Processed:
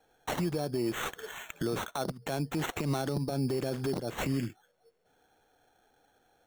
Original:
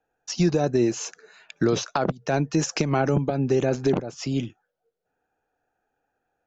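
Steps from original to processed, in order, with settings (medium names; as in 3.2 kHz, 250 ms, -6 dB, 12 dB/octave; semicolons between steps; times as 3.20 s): compression 5:1, threshold -35 dBFS, peak gain reduction 17 dB; peak limiter -32 dBFS, peak gain reduction 11 dB; sample-and-hold 9×; trim +9 dB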